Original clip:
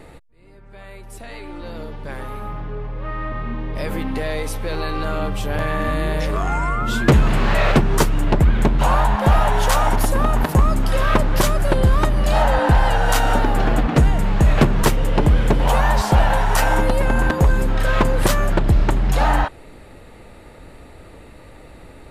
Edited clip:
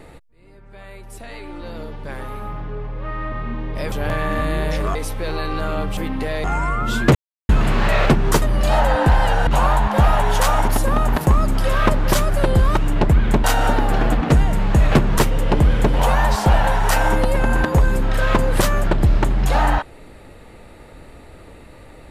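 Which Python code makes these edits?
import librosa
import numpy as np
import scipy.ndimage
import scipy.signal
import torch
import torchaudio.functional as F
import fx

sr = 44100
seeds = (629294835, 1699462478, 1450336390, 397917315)

y = fx.edit(x, sr, fx.swap(start_s=3.92, length_s=0.47, other_s=5.41, other_length_s=1.03),
    fx.insert_silence(at_s=7.15, length_s=0.34),
    fx.swap(start_s=8.08, length_s=0.67, other_s=12.05, other_length_s=1.05), tone=tone)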